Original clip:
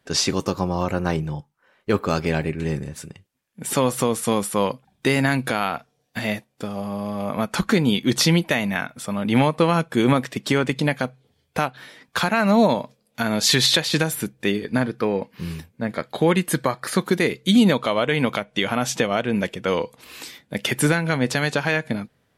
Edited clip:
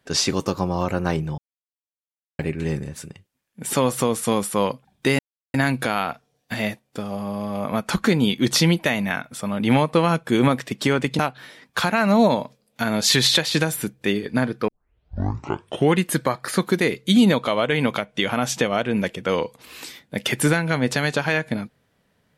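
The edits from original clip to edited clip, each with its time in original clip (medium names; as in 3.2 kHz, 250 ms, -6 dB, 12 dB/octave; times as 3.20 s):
1.38–2.39 s: mute
5.19 s: insert silence 0.35 s
10.84–11.58 s: delete
15.07 s: tape start 1.30 s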